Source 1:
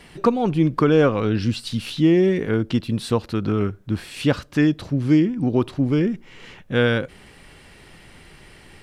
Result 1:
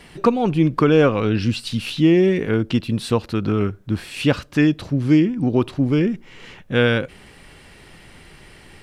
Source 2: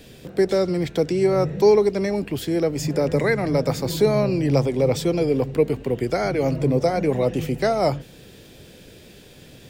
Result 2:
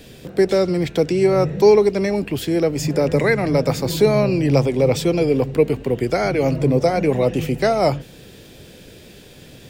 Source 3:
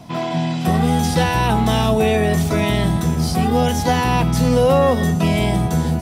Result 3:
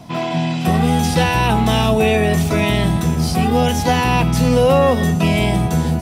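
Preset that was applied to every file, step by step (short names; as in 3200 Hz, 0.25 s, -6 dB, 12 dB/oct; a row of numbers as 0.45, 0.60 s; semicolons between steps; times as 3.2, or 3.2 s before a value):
dynamic EQ 2600 Hz, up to +5 dB, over -45 dBFS, Q 3.8; normalise peaks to -3 dBFS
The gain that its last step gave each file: +1.5, +3.0, +1.0 dB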